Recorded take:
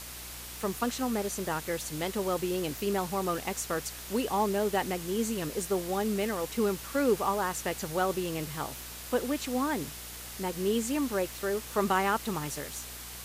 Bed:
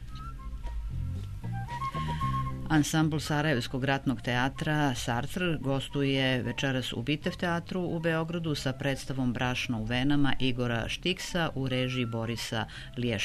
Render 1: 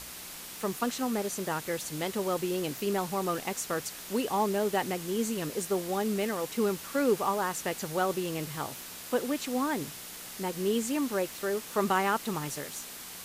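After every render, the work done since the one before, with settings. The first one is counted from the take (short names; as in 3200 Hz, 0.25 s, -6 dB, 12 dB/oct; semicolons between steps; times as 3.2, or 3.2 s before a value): de-hum 60 Hz, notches 2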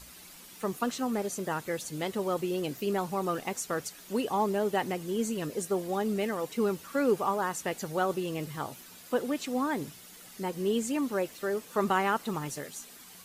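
denoiser 10 dB, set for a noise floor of -44 dBFS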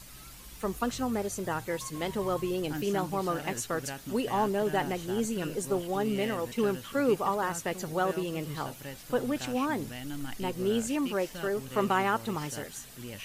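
add bed -12.5 dB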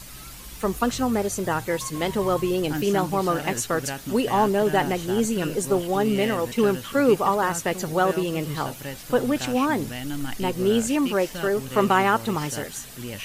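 gain +7.5 dB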